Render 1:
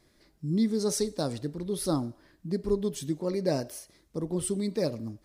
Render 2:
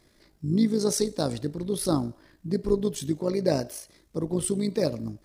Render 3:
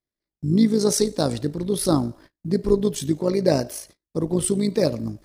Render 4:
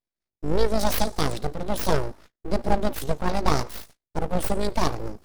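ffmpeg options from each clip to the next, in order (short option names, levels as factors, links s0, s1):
-af "tremolo=f=54:d=0.519,volume=1.88"
-af "agate=range=0.0178:threshold=0.00316:ratio=16:detection=peak,volume=1.78"
-af "aeval=exprs='abs(val(0))':c=same"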